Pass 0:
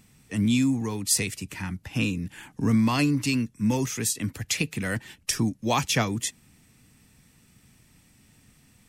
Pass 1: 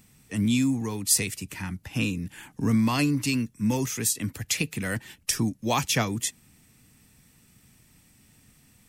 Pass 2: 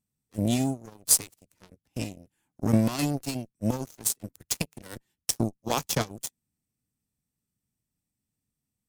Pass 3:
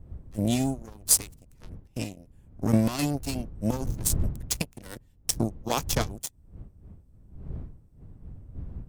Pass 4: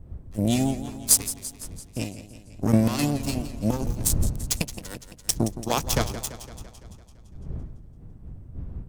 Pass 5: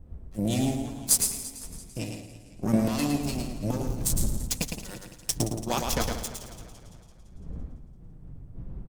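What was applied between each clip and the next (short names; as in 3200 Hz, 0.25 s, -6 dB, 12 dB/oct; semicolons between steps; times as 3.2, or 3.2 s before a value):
high shelf 11000 Hz +8 dB; gain -1 dB
added harmonics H 3 -39 dB, 5 -9 dB, 7 -8 dB, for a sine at -6.5 dBFS; bell 2100 Hz -8.5 dB 1.9 oct; gain +1 dB
wind noise 91 Hz -37 dBFS
warbling echo 0.169 s, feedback 62%, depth 104 cents, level -13 dB; gain +2.5 dB
flange 0.66 Hz, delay 3.7 ms, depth 3.7 ms, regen -42%; feedback echo 0.11 s, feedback 26%, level -5 dB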